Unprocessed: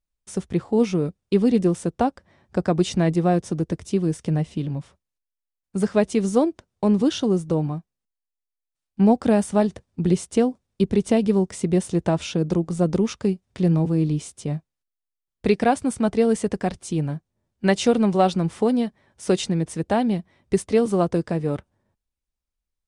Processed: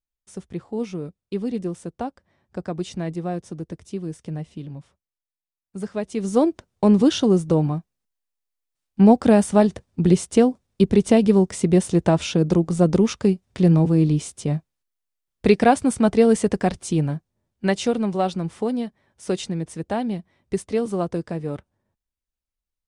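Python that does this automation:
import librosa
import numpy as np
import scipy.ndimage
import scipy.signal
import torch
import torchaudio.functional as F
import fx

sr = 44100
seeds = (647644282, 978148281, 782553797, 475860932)

y = fx.gain(x, sr, db=fx.line((6.06, -8.0), (6.49, 3.5), (16.92, 3.5), (18.01, -4.0)))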